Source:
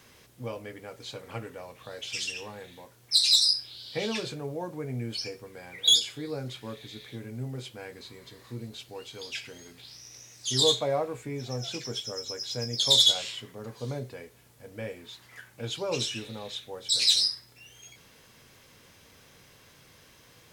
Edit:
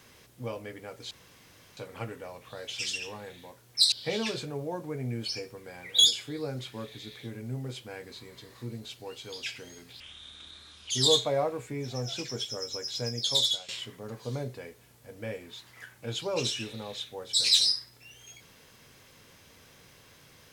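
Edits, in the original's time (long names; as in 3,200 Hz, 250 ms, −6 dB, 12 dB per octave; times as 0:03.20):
0:01.11: splice in room tone 0.66 s
0:03.26–0:03.81: remove
0:09.89–0:10.46: play speed 63%
0:12.62–0:13.24: fade out linear, to −16.5 dB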